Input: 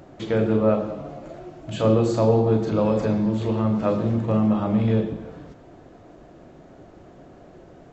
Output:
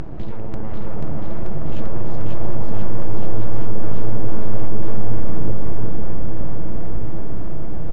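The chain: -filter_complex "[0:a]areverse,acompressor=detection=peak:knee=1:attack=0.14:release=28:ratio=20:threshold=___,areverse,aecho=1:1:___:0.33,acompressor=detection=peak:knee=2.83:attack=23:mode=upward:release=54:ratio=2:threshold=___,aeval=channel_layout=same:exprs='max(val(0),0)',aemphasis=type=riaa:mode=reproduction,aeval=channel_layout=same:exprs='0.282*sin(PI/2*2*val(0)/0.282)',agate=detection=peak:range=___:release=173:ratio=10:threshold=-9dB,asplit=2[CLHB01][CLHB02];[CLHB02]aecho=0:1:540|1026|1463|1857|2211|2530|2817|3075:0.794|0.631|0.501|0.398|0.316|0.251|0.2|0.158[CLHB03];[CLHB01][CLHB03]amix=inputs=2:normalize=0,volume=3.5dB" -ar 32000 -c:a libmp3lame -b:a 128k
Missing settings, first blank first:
-27dB, 6.2, -42dB, -7dB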